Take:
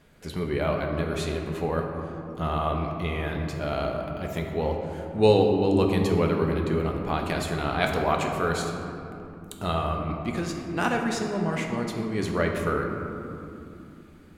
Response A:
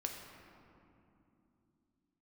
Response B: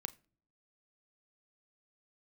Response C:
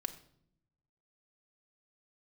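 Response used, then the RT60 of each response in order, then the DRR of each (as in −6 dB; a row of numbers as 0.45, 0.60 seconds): A; 2.8 s, non-exponential decay, 0.65 s; 1.5, 11.0, 6.0 decibels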